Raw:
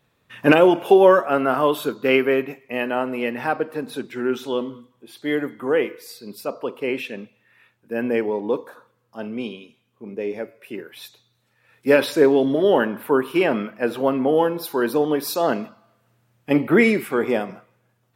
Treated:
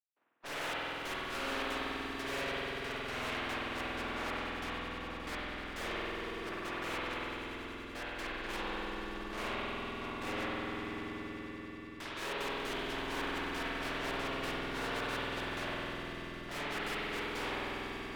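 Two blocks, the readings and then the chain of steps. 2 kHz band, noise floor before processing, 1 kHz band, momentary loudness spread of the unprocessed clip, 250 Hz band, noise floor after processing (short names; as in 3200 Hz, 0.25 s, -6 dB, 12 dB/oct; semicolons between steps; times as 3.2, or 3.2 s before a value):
-10.0 dB, -67 dBFS, -13.0 dB, 18 LU, -19.5 dB, -45 dBFS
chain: spectral contrast lowered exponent 0.16; LPF 3400 Hz 12 dB/oct; low-pass opened by the level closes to 1600 Hz, open at -16.5 dBFS; HPF 310 Hz 12 dB/oct; transient shaper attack +4 dB, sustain -2 dB; reverse; compressor 6:1, threshold -29 dBFS, peak gain reduction 18 dB; reverse; step gate "..x..xxxx.x" 185 bpm -60 dB; tube stage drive 44 dB, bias 0.7; vibrato 1.4 Hz 41 cents; on a send: swelling echo 96 ms, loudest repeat 5, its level -15 dB; on the sum: spring tank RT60 3.3 s, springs 48 ms, chirp 50 ms, DRR -8.5 dB; gain +1.5 dB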